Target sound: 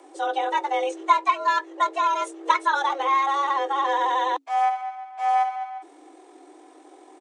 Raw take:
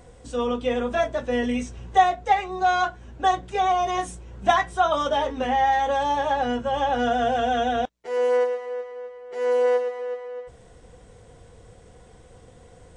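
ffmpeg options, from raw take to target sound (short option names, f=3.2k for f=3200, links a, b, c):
-af "atempo=1.8,afreqshift=270"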